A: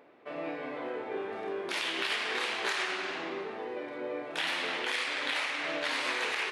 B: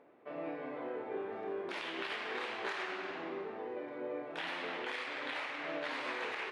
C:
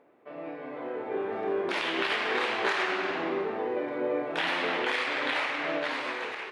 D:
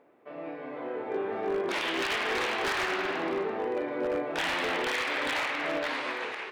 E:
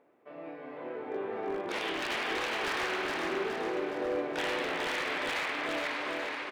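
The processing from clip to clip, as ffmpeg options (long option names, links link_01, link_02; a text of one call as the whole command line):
ffmpeg -i in.wav -af "lowpass=frequency=1400:poles=1,volume=-3dB" out.wav
ffmpeg -i in.wav -af "dynaudnorm=framelen=320:gausssize=7:maxgain=10dB,volume=1dB" out.wav
ffmpeg -i in.wav -af "aeval=exprs='0.0708*(abs(mod(val(0)/0.0708+3,4)-2)-1)':channel_layout=same" out.wav
ffmpeg -i in.wav -af "aecho=1:1:417|834|1251|1668|2085|2502:0.631|0.315|0.158|0.0789|0.0394|0.0197,volume=-4.5dB" out.wav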